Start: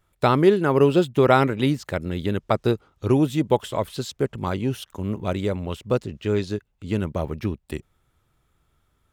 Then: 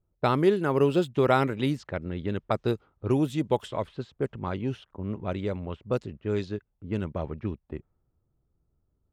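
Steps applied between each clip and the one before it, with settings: level-controlled noise filter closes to 500 Hz, open at -16.5 dBFS; trim -5.5 dB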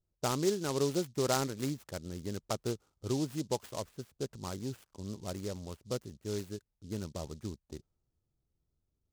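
delay time shaken by noise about 5.1 kHz, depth 0.088 ms; trim -8.5 dB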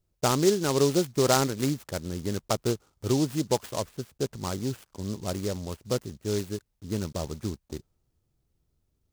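block-companded coder 5-bit; trim +8 dB

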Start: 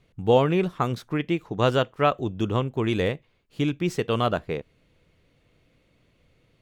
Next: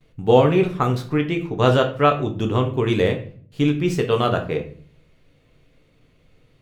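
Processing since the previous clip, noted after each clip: gate with hold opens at -55 dBFS; reverberation RT60 0.50 s, pre-delay 7 ms, DRR 3.5 dB; trim +2.5 dB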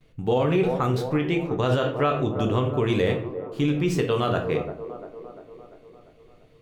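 feedback echo behind a band-pass 346 ms, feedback 58%, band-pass 520 Hz, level -12 dB; peak limiter -12 dBFS, peak gain reduction 10.5 dB; trim -1 dB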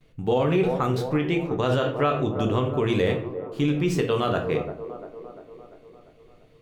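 hum notches 60/120 Hz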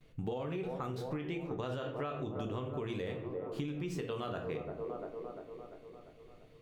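compression 12:1, threshold -31 dBFS, peak gain reduction 14 dB; trim -3.5 dB

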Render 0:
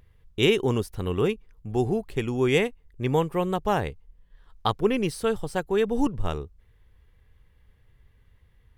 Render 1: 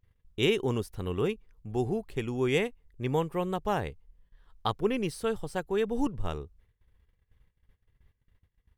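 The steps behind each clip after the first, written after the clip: gate -55 dBFS, range -17 dB; trim -5 dB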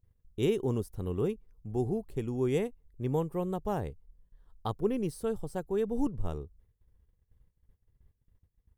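peaking EQ 2.5 kHz -13 dB 2.6 oct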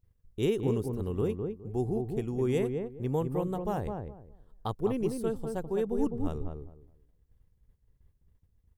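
filtered feedback delay 207 ms, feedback 23%, low-pass 990 Hz, level -4 dB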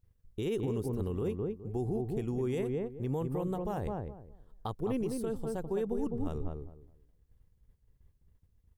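peak limiter -24.5 dBFS, peak gain reduction 9 dB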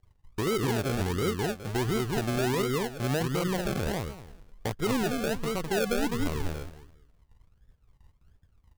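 decimation with a swept rate 36×, swing 60% 1.4 Hz; trim +5 dB

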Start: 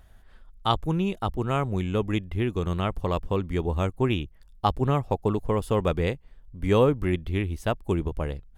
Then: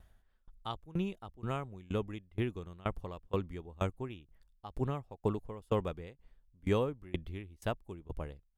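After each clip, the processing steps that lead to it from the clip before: sawtooth tremolo in dB decaying 2.1 Hz, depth 24 dB; trim -5 dB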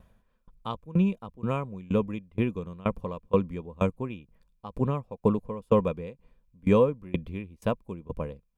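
small resonant body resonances 200/490/1000/2400 Hz, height 13 dB, ringing for 25 ms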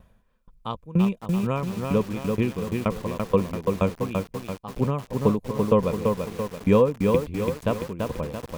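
bit-crushed delay 337 ms, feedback 55%, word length 7-bit, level -3.5 dB; trim +2.5 dB

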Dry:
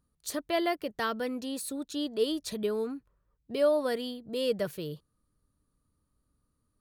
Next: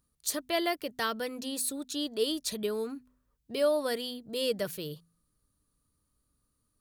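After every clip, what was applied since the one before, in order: treble shelf 2.8 kHz +9 dB; de-hum 83.93 Hz, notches 3; trim -2 dB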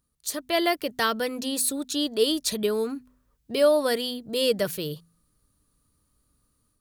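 level rider gain up to 7 dB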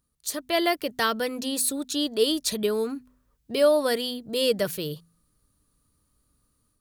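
no audible change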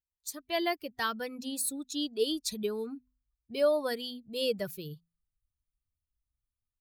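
expander on every frequency bin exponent 1.5; trim -5.5 dB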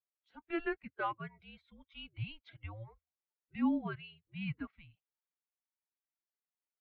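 coarse spectral quantiser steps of 15 dB; mistuned SSB -330 Hz 540–2800 Hz; trim -3 dB

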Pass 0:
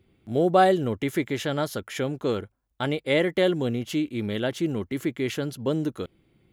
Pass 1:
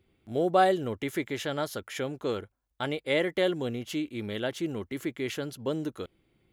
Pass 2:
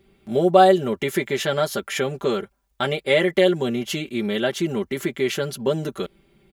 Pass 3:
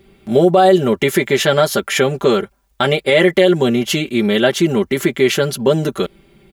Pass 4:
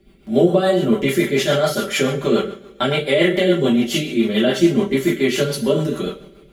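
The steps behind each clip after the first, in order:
peaking EQ 160 Hz -5 dB 2 oct; trim -3 dB
comb 5.1 ms, depth 86%; in parallel at -2.5 dB: compression, threshold -32 dBFS, peak gain reduction 17 dB; on the sum: trim +4 dB
loudness maximiser +10 dB; trim -1 dB
two-slope reverb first 0.43 s, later 1.8 s, from -22 dB, DRR -4.5 dB; rotary cabinet horn 7 Hz; trim -7 dB

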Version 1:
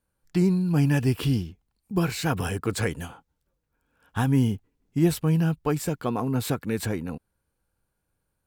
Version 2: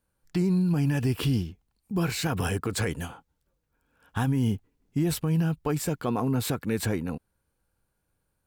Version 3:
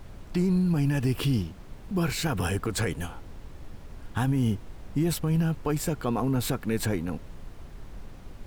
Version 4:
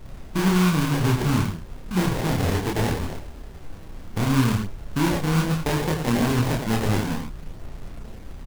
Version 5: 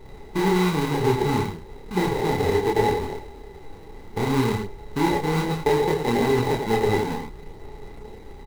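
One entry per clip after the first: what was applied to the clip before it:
peak limiter -18.5 dBFS, peak gain reduction 8.5 dB; trim +1 dB
added noise brown -40 dBFS
echo from a far wall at 15 m, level -6 dB; sample-rate reducer 1.3 kHz, jitter 20%; chorus voices 2, 0.32 Hz, delay 29 ms, depth 4.4 ms; trim +7 dB
small resonant body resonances 420/840/2000/3900 Hz, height 17 dB, ringing for 45 ms; trim -5 dB

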